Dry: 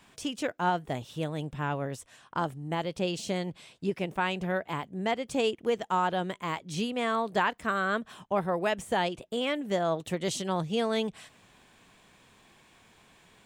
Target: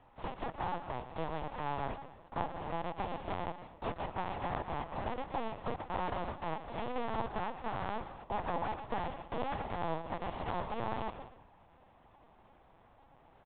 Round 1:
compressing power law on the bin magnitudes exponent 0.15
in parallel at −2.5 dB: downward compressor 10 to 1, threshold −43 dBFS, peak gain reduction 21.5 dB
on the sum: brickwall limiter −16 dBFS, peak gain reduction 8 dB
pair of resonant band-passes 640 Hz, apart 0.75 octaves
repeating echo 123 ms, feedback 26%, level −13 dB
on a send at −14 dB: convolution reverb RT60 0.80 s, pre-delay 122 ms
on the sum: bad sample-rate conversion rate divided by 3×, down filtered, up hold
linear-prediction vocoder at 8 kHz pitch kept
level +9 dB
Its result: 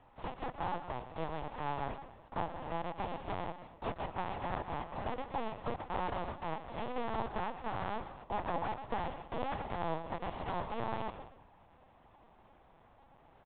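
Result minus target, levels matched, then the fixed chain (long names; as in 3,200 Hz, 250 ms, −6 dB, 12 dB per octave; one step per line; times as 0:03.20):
downward compressor: peak gain reduction +7.5 dB
compressing power law on the bin magnitudes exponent 0.15
in parallel at −2.5 dB: downward compressor 10 to 1, threshold −34.5 dBFS, peak gain reduction 14 dB
on the sum: brickwall limiter −16 dBFS, peak gain reduction 9 dB
pair of resonant band-passes 640 Hz, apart 0.75 octaves
repeating echo 123 ms, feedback 26%, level −13 dB
on a send at −14 dB: convolution reverb RT60 0.80 s, pre-delay 122 ms
on the sum: bad sample-rate conversion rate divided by 3×, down filtered, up hold
linear-prediction vocoder at 8 kHz pitch kept
level +9 dB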